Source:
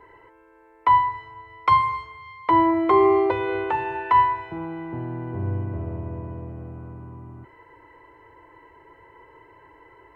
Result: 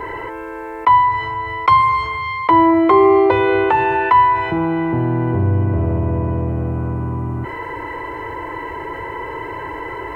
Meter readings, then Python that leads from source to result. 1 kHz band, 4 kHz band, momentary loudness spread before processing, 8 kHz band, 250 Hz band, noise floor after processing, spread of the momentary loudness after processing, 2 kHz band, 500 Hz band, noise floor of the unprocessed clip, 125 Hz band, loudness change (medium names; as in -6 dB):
+7.0 dB, +8.5 dB, 20 LU, no reading, +9.0 dB, -29 dBFS, 16 LU, +10.5 dB, +7.5 dB, -54 dBFS, +12.5 dB, +6.5 dB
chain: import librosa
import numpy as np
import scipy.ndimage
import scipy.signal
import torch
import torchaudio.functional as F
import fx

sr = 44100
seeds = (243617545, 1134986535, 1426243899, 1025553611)

y = fx.env_flatten(x, sr, amount_pct=50)
y = y * librosa.db_to_amplitude(4.5)